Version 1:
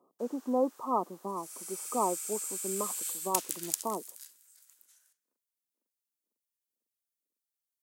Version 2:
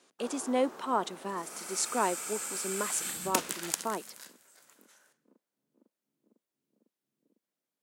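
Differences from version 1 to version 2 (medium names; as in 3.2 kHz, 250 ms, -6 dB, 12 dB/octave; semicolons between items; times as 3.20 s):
speech: remove brick-wall FIR low-pass 1.3 kHz; background: remove differentiator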